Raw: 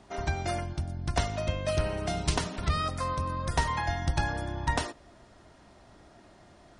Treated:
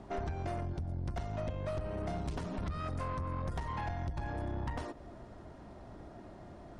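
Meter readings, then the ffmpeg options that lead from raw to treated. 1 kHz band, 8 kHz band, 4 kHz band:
-9.0 dB, -19.5 dB, -17.5 dB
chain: -af "tiltshelf=f=1.5k:g=7.5,acompressor=threshold=-29dB:ratio=12,aeval=exprs='(tanh(39.8*val(0)+0.3)-tanh(0.3))/39.8':c=same"

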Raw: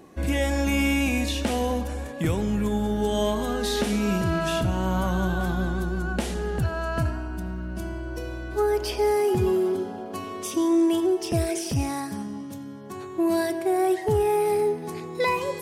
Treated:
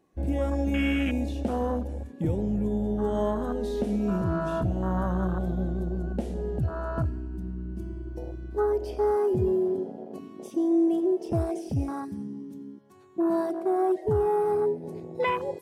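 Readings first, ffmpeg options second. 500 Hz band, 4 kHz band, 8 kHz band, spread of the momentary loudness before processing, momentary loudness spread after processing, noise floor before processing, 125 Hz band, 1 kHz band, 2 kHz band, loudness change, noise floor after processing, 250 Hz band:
-2.0 dB, under -10 dB, under -15 dB, 11 LU, 12 LU, -37 dBFS, -2.0 dB, -3.5 dB, -8.5 dB, -2.5 dB, -45 dBFS, -2.0 dB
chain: -af "afwtdn=0.0562,volume=-2dB"

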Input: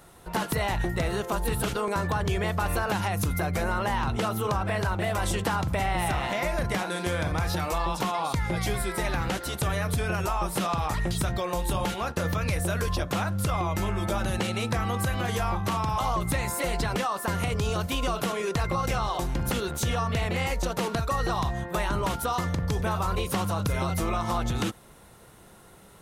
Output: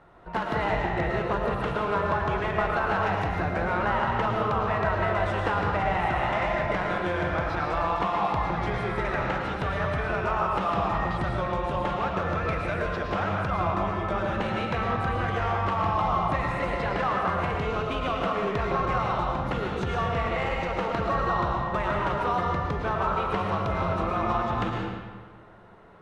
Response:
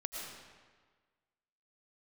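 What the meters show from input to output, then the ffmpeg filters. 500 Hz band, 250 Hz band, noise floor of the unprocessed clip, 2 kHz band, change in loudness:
+2.5 dB, -1.0 dB, -51 dBFS, +2.5 dB, +1.0 dB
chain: -filter_complex "[0:a]adynamicsmooth=sensitivity=1:basefreq=2.1k,equalizer=f=1.4k:w=0.44:g=6.5[a];[1:a]atrim=start_sample=2205[b];[a][b]afir=irnorm=-1:irlink=0,volume=-1.5dB"

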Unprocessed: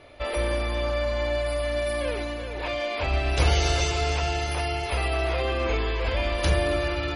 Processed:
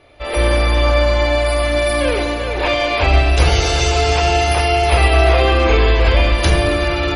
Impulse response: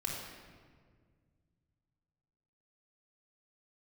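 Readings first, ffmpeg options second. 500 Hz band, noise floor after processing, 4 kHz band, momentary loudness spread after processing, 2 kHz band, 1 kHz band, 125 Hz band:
+10.5 dB, -22 dBFS, +11.0 dB, 5 LU, +11.0 dB, +12.5 dB, +11.0 dB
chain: -filter_complex "[0:a]dynaudnorm=f=210:g=3:m=14dB,asplit=2[a][b];[1:a]atrim=start_sample=2205[c];[b][c]afir=irnorm=-1:irlink=0,volume=-7.5dB[d];[a][d]amix=inputs=2:normalize=0,volume=-2.5dB"

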